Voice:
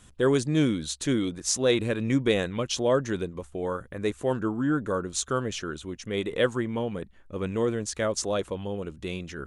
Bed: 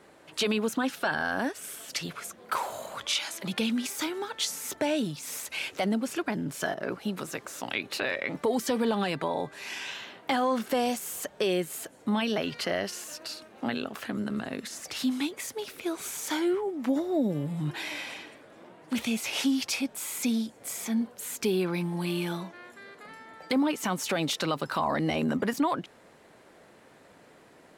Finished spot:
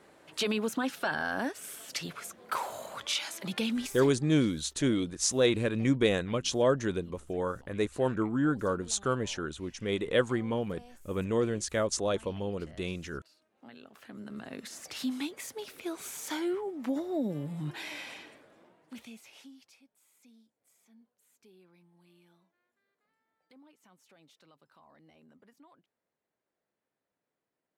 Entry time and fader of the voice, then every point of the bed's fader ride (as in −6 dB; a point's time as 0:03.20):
3.75 s, −2.0 dB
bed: 0:03.83 −3 dB
0:04.34 −26.5 dB
0:13.33 −26.5 dB
0:14.66 −5 dB
0:18.36 −5 dB
0:19.85 −33 dB